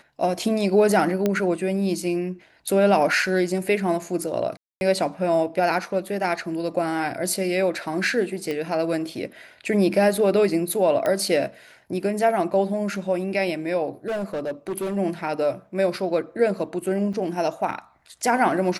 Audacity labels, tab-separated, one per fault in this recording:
1.260000	1.260000	pop -9 dBFS
4.570000	4.810000	dropout 241 ms
8.510000	8.510000	pop -16 dBFS
11.060000	11.060000	pop -12 dBFS
14.070000	14.970000	clipped -23.5 dBFS
17.130000	17.140000	dropout 5.4 ms

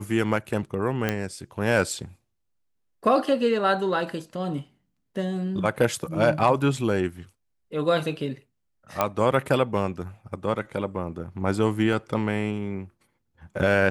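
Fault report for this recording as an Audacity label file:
1.090000	1.090000	pop -10 dBFS
6.900000	6.900000	dropout 2.1 ms
9.010000	9.010000	pop -8 dBFS
11.930000	11.930000	dropout 3.4 ms

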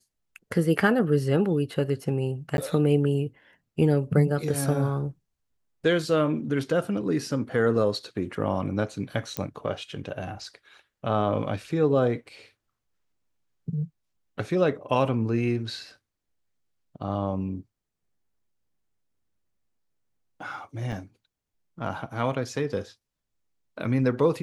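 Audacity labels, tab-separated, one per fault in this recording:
2.570000	2.580000	dropout
9.370000	9.370000	pop -11 dBFS
20.920000	20.930000	dropout 5.5 ms

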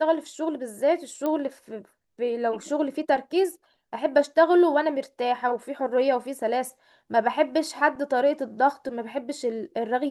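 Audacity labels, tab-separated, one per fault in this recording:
1.260000	1.260000	pop -16 dBFS

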